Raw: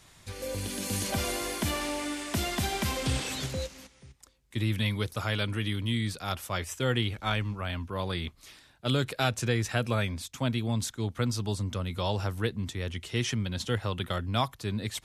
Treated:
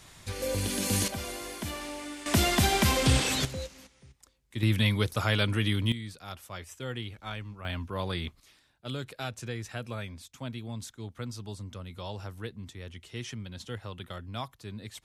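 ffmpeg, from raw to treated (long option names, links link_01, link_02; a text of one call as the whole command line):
ffmpeg -i in.wav -af "asetnsamples=nb_out_samples=441:pad=0,asendcmd='1.08 volume volume -6dB;2.26 volume volume 6dB;3.45 volume volume -3dB;4.63 volume volume 3.5dB;5.92 volume volume -9dB;7.65 volume volume -0.5dB;8.4 volume volume -9dB',volume=4dB" out.wav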